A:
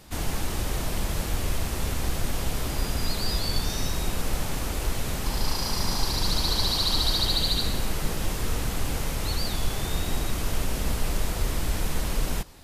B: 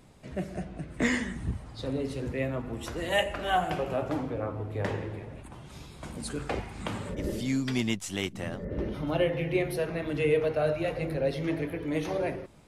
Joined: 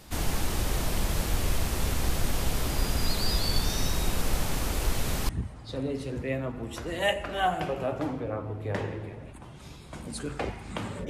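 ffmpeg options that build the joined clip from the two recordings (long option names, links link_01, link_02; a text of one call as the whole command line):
ffmpeg -i cue0.wav -i cue1.wav -filter_complex "[0:a]apad=whole_dur=11.09,atrim=end=11.09,atrim=end=5.292[link_01];[1:a]atrim=start=1.388:end=7.19[link_02];[link_01][link_02]acrossfade=duration=0.004:curve1=hsin:curve2=hsin" out.wav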